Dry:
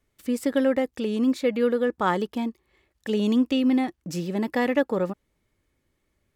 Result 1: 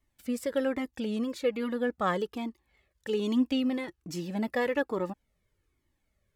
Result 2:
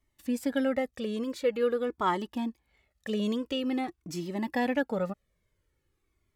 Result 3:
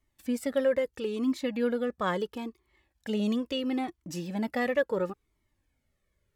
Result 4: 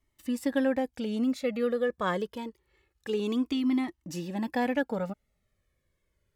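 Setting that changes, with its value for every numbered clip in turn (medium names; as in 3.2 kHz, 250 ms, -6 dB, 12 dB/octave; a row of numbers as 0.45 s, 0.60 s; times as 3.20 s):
Shepard-style flanger, rate: 1.2 Hz, 0.47 Hz, 0.74 Hz, 0.26 Hz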